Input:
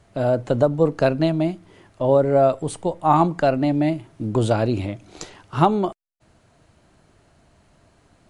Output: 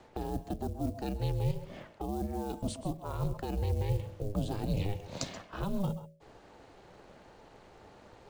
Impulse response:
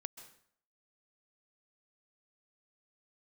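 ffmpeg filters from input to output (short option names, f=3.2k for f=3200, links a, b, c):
-filter_complex "[0:a]equalizer=f=450:t=o:w=0.93:g=7,bandreject=f=60:t=h:w=6,bandreject=f=120:t=h:w=6,bandreject=f=180:t=h:w=6,bandreject=f=240:t=h:w=6,bandreject=f=300:t=h:w=6,bandreject=f=360:t=h:w=6,bandreject=f=420:t=h:w=6,asplit=2[a][b];[b]alimiter=limit=-8.5dB:level=0:latency=1:release=494,volume=-2dB[c];[a][c]amix=inputs=2:normalize=0,highpass=140,lowpass=5.6k,areverse,acompressor=threshold=-20dB:ratio=8,areverse,acrusher=bits=8:mode=log:mix=0:aa=0.000001,aeval=exprs='val(0)*sin(2*PI*200*n/s)':c=same[d];[1:a]atrim=start_sample=2205,atrim=end_sample=6174[e];[d][e]afir=irnorm=-1:irlink=0,acrossover=split=240|3000[f][g][h];[g]acompressor=threshold=-44dB:ratio=6[i];[f][i][h]amix=inputs=3:normalize=0,volume=3.5dB"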